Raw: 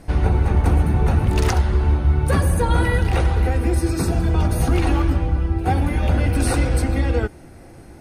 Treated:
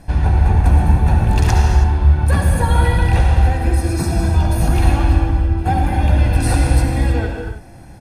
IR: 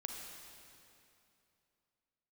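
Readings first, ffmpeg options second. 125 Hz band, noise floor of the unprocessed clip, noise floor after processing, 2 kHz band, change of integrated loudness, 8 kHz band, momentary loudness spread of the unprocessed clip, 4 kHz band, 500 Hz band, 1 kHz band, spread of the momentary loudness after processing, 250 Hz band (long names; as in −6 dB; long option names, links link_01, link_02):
+4.5 dB, −42 dBFS, −38 dBFS, +2.5 dB, +4.0 dB, +2.5 dB, 3 LU, +2.5 dB, −0.5 dB, +4.5 dB, 4 LU, +1.0 dB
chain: -filter_complex "[0:a]aecho=1:1:1.2:0.45[link_01];[1:a]atrim=start_sample=2205,afade=type=out:start_time=0.26:duration=0.01,atrim=end_sample=11907,asetrate=28224,aresample=44100[link_02];[link_01][link_02]afir=irnorm=-1:irlink=0,volume=1dB"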